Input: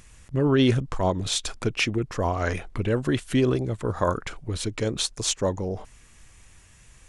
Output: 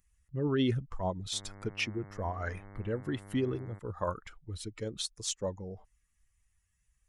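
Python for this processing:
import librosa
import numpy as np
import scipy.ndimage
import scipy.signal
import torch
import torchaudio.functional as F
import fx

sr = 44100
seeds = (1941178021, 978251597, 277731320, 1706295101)

y = fx.bin_expand(x, sr, power=1.5)
y = fx.dmg_buzz(y, sr, base_hz=100.0, harmonics=22, level_db=-43.0, tilt_db=-5, odd_only=False, at=(1.32, 3.78), fade=0.02)
y = y * 10.0 ** (-7.5 / 20.0)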